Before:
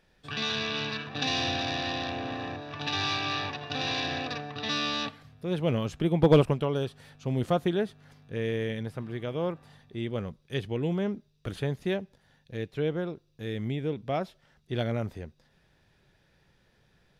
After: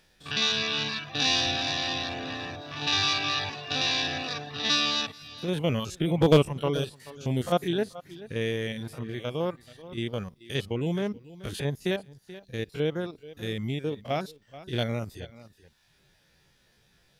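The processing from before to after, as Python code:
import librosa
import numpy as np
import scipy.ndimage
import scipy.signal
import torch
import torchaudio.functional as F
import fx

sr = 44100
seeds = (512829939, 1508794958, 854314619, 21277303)

y = fx.spec_steps(x, sr, hold_ms=50)
y = fx.high_shelf(y, sr, hz=3200.0, db=12.0)
y = y + 10.0 ** (-16.0 / 20.0) * np.pad(y, (int(432 * sr / 1000.0), 0))[:len(y)]
y = fx.dereverb_blind(y, sr, rt60_s=0.68)
y = y * librosa.db_to_amplitude(2.0)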